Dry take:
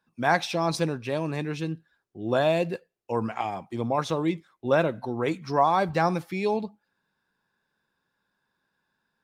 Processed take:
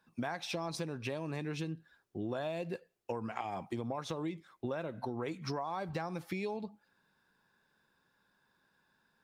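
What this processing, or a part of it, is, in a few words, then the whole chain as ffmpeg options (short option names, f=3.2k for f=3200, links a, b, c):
serial compression, peaks first: -af "acompressor=threshold=-32dB:ratio=4,acompressor=threshold=-39dB:ratio=3,volume=3dB"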